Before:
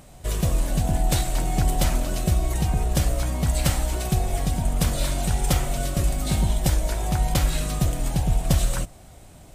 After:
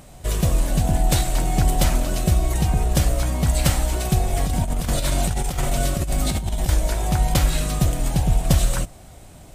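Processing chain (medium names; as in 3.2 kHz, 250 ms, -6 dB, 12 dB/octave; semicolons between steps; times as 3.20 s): 4.34–6.69 s: compressor with a negative ratio -23 dBFS, ratio -0.5; trim +3 dB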